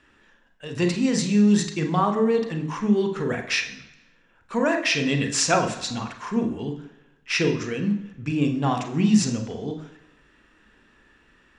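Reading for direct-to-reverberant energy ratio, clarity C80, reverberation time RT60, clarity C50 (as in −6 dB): 5.0 dB, 12.5 dB, 1.0 s, 9.0 dB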